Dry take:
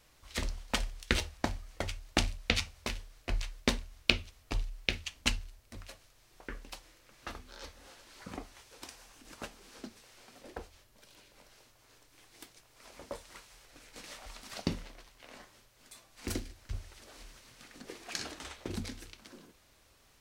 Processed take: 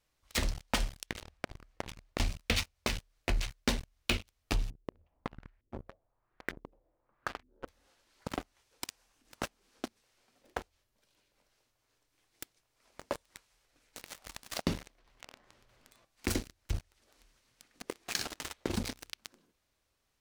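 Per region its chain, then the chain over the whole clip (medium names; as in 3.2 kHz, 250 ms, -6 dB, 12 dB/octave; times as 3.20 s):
1.06–2.20 s: treble shelf 3.6 kHz -10 dB + compression, threshold -41 dBFS
4.70–7.68 s: compression 12:1, threshold -40 dBFS + LFO low-pass saw up 1.1 Hz 280–2200 Hz
14.99–16.05 s: low-pass 2.2 kHz 6 dB/octave + level flattener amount 100%
whole clip: waveshaping leveller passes 5; compression 2:1, threshold -31 dBFS; trim -5 dB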